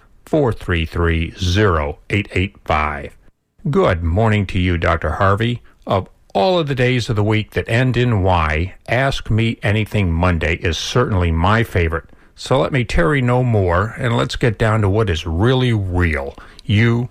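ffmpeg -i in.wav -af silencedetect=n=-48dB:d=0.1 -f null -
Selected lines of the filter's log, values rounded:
silence_start: 3.30
silence_end: 3.59 | silence_duration: 0.30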